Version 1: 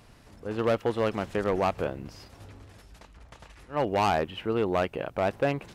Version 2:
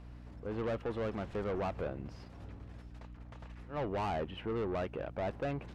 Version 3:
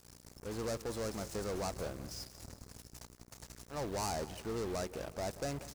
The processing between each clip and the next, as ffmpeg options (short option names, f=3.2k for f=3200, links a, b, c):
-af "asoftclip=type=tanh:threshold=-28dB,aeval=exprs='val(0)+0.00501*(sin(2*PI*60*n/s)+sin(2*PI*2*60*n/s)/2+sin(2*PI*3*60*n/s)/3+sin(2*PI*4*60*n/s)/4+sin(2*PI*5*60*n/s)/5)':c=same,aemphasis=mode=reproduction:type=75fm,volume=-4dB"
-af "aexciter=amount=14.6:drive=7.2:freq=4.8k,acrusher=bits=6:mix=0:aa=0.5,aecho=1:1:182|364|546|728:0.158|0.0697|0.0307|0.0135,volume=-3dB"